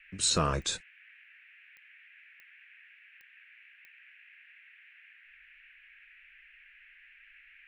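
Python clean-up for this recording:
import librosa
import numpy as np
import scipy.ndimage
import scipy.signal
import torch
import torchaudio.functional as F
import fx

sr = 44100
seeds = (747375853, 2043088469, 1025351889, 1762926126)

y = fx.fix_declip(x, sr, threshold_db=-17.0)
y = fx.fix_declick_ar(y, sr, threshold=10.0)
y = fx.noise_reduce(y, sr, print_start_s=2.87, print_end_s=3.37, reduce_db=25.0)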